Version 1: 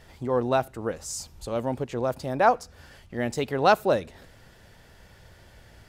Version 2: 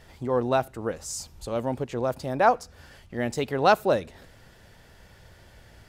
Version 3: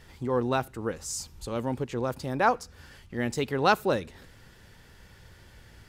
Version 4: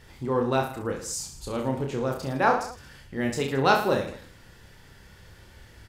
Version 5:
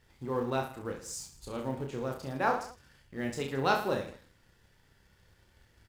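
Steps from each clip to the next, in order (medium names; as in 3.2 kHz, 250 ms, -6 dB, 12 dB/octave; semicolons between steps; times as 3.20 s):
no audible change
peaking EQ 650 Hz -8 dB 0.53 oct
reverse bouncing-ball echo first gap 30 ms, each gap 1.2×, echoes 5
companding laws mixed up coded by A; trim -6.5 dB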